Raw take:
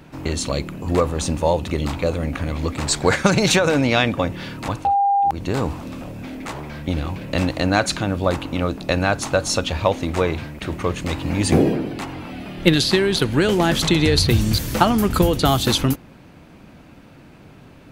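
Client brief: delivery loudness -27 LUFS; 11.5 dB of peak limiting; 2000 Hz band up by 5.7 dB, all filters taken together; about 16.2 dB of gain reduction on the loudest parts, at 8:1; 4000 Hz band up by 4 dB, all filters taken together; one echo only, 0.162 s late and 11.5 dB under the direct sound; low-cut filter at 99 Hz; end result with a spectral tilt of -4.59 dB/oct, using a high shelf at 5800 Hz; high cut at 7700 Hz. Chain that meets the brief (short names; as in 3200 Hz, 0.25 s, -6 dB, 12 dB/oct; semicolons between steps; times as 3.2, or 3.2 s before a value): HPF 99 Hz; LPF 7700 Hz; bell 2000 Hz +7 dB; bell 4000 Hz +5 dB; high shelf 5800 Hz -6 dB; compressor 8:1, threshold -25 dBFS; limiter -18.5 dBFS; echo 0.162 s -11.5 dB; gain +3.5 dB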